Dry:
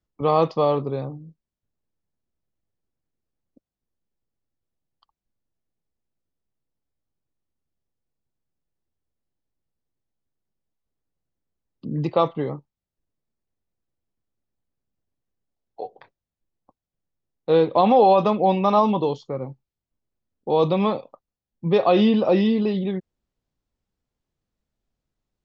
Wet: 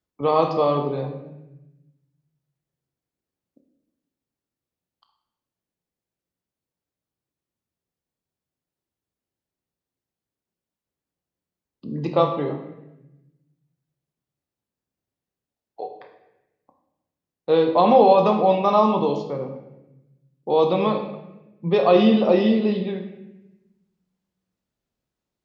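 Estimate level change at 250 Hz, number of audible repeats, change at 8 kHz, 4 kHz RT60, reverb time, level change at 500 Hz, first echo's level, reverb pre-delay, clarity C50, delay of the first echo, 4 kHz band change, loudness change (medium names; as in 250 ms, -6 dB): +0.5 dB, no echo, no reading, 0.80 s, 0.95 s, +1.5 dB, no echo, 17 ms, 7.0 dB, no echo, +1.0 dB, +1.0 dB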